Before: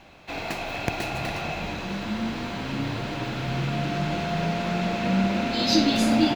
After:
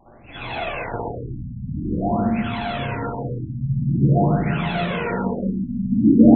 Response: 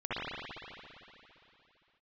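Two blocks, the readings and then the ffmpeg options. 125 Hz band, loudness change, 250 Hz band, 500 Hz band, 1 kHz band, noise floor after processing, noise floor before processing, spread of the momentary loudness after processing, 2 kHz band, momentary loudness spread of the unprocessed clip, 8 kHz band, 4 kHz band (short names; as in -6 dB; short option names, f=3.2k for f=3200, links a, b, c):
+7.5 dB, +3.5 dB, +6.5 dB, +4.0 dB, +2.0 dB, -40 dBFS, -34 dBFS, 13 LU, -0.5 dB, 10 LU, under -40 dB, -8.5 dB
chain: -filter_complex "[0:a]aeval=exprs='val(0)+0.00794*sin(2*PI*3400*n/s)':c=same[a];[1:a]atrim=start_sample=2205[b];[a][b]afir=irnorm=-1:irlink=0,aphaser=in_gain=1:out_gain=1:delay=2.2:decay=0.59:speed=0.48:type=sinusoidal,afftfilt=real='re*lt(b*sr/1024,250*pow(4300/250,0.5+0.5*sin(2*PI*0.47*pts/sr)))':imag='im*lt(b*sr/1024,250*pow(4300/250,0.5+0.5*sin(2*PI*0.47*pts/sr)))':win_size=1024:overlap=0.75,volume=-5dB"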